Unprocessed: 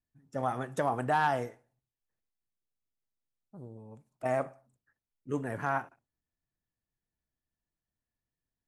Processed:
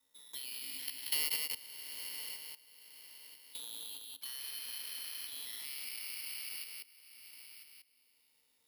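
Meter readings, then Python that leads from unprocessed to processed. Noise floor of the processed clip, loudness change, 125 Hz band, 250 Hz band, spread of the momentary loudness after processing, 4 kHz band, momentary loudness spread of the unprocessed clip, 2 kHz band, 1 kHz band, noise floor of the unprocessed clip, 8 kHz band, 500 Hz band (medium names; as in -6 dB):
-74 dBFS, -6.5 dB, under -30 dB, -26.0 dB, 18 LU, no reading, 21 LU, -8.5 dB, -28.5 dB, under -85 dBFS, +15.0 dB, -28.5 dB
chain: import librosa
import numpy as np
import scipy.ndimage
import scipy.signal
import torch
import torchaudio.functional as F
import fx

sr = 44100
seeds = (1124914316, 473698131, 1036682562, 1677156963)

y = fx.spec_trails(x, sr, decay_s=2.51)
y = fx.notch(y, sr, hz=590.0, q=12.0)
y = fx.level_steps(y, sr, step_db=24)
y = fx.quant_float(y, sr, bits=2)
y = fx.freq_invert(y, sr, carrier_hz=3700)
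y = fx.air_absorb(y, sr, metres=350.0)
y = y + 10.0 ** (-4.5 / 20.0) * np.pad(y, (int(184 * sr / 1000.0), 0))[:len(y)]
y = (np.kron(scipy.signal.resample_poly(y, 1, 6), np.eye(6)[0]) * 6)[:len(y)]
y = fx.small_body(y, sr, hz=(270.0, 470.0, 900.0), ring_ms=65, db=12)
y = fx.band_squash(y, sr, depth_pct=70)
y = F.gain(torch.from_numpy(y), 1.0).numpy()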